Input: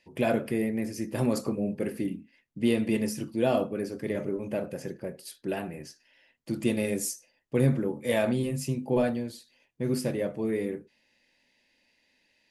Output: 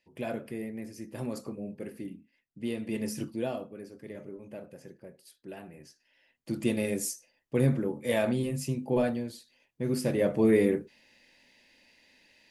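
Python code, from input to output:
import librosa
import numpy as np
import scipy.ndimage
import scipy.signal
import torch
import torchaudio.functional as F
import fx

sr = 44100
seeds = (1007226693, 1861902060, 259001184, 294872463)

y = fx.gain(x, sr, db=fx.line((2.82, -9.0), (3.24, 0.0), (3.59, -12.0), (5.53, -12.0), (6.52, -1.5), (9.96, -1.5), (10.38, 7.0)))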